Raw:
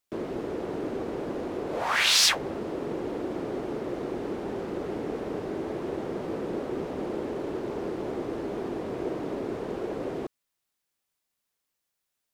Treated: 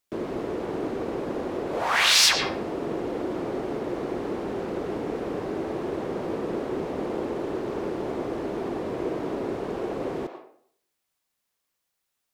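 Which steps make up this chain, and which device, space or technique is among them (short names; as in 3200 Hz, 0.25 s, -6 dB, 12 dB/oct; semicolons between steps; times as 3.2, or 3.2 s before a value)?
filtered reverb send (on a send: HPF 550 Hz + LPF 5100 Hz 12 dB/oct + reverb RT60 0.60 s, pre-delay 89 ms, DRR 4.5 dB); on the sum: gain +2 dB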